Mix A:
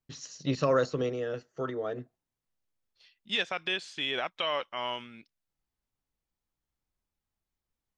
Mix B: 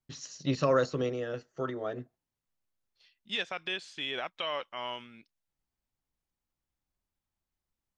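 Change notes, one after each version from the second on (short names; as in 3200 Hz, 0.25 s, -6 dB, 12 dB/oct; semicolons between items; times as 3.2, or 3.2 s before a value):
first voice: add notch 460 Hz, Q 14; second voice -3.5 dB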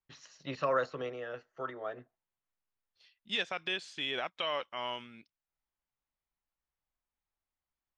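first voice: add three-band isolator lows -13 dB, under 570 Hz, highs -16 dB, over 3200 Hz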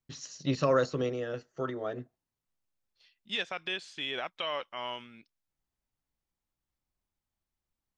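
first voice: remove three-band isolator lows -13 dB, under 570 Hz, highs -16 dB, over 3200 Hz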